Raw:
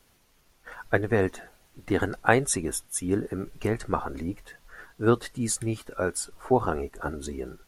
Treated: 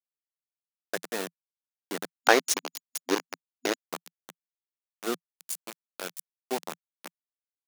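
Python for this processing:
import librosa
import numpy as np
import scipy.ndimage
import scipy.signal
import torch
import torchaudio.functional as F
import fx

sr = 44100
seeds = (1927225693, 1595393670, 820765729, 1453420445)

y = np.where(np.abs(x) >= 10.0 ** (-21.0 / 20.0), x, 0.0)
y = fx.spec_box(y, sr, start_s=2.2, length_s=1.55, low_hz=240.0, high_hz=6900.0, gain_db=10)
y = scipy.signal.sosfilt(scipy.signal.ellip(4, 1.0, 40, 170.0, 'highpass', fs=sr, output='sos'), y)
y = fx.high_shelf(y, sr, hz=3400.0, db=11.0)
y = y * librosa.db_to_amplitude(-9.5)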